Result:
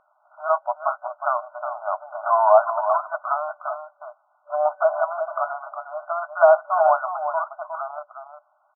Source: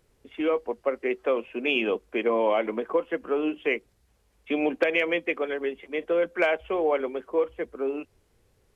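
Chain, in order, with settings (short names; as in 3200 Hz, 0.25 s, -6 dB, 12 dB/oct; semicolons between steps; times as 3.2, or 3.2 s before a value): sine folder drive 5 dB, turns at -9.5 dBFS; outdoor echo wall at 62 m, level -8 dB; FFT band-pass 590–1500 Hz; gain +5 dB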